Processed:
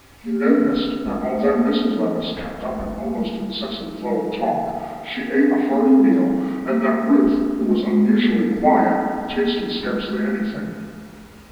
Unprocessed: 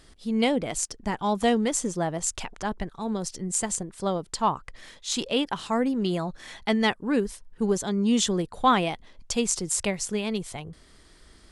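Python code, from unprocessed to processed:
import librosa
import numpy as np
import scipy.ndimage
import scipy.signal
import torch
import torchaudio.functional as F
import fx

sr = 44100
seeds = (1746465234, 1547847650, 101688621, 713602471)

y = fx.partial_stretch(x, sr, pct=79)
y = fx.quant_dither(y, sr, seeds[0], bits=8, dither='triangular')
y = fx.lowpass(y, sr, hz=1900.0, slope=6)
y = fx.rev_fdn(y, sr, rt60_s=2.2, lf_ratio=1.05, hf_ratio=0.3, size_ms=21.0, drr_db=-2.0)
y = y * librosa.db_to_amplitude(3.5)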